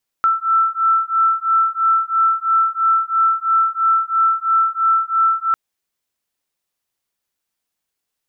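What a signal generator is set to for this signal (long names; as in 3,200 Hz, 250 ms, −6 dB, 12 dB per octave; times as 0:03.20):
two tones that beat 1,330 Hz, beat 3 Hz, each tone −16.5 dBFS 5.30 s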